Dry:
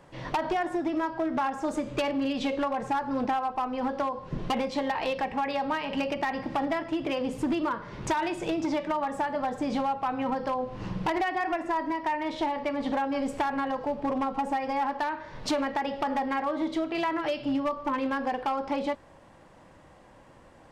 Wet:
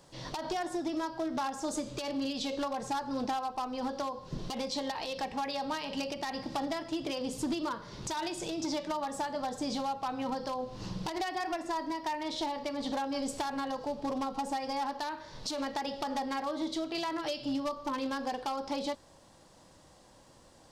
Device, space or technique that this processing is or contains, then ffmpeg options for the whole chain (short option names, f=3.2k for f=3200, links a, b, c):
over-bright horn tweeter: -af "highshelf=f=3.2k:t=q:w=1.5:g=11,alimiter=limit=-20.5dB:level=0:latency=1:release=120,volume=-5dB"